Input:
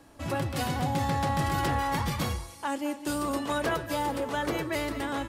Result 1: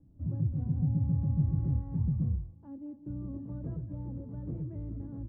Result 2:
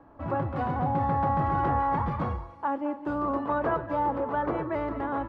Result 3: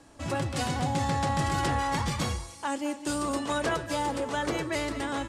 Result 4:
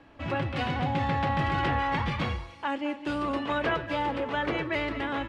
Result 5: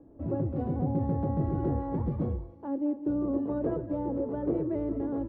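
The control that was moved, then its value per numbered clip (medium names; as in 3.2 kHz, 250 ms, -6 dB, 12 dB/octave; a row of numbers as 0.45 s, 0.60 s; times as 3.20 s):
resonant low-pass, frequency: 150 Hz, 1.1 kHz, 8 kHz, 2.7 kHz, 410 Hz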